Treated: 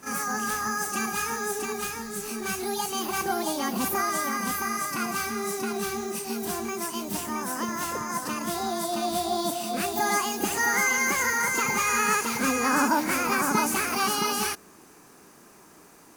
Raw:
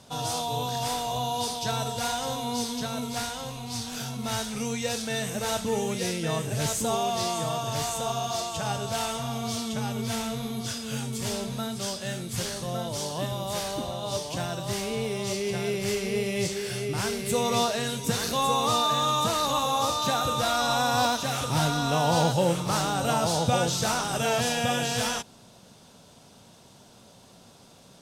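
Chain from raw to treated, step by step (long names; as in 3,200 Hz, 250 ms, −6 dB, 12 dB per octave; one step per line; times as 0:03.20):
backwards echo 61 ms −10 dB
wrong playback speed 45 rpm record played at 78 rpm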